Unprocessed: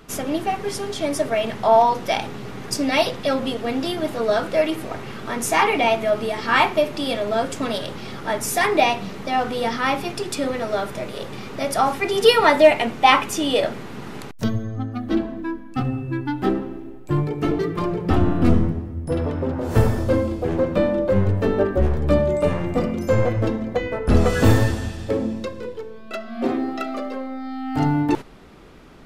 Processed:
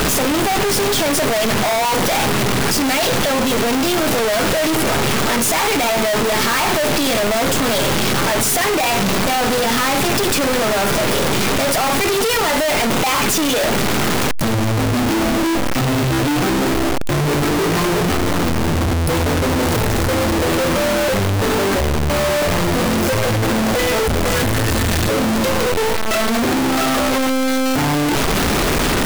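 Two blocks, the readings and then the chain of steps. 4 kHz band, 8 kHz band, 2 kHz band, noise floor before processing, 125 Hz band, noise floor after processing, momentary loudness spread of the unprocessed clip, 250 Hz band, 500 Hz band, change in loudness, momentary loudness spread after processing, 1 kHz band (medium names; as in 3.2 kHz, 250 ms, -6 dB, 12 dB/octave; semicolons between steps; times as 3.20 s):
+9.0 dB, +14.0 dB, +7.0 dB, -37 dBFS, +3.5 dB, -17 dBFS, 13 LU, +5.0 dB, +3.0 dB, +5.0 dB, 2 LU, +3.5 dB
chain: one-bit comparator; trim +4.5 dB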